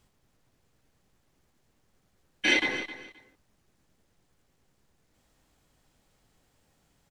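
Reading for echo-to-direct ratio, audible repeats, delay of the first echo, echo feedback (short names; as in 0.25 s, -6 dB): -13.5 dB, 2, 0.263 s, 20%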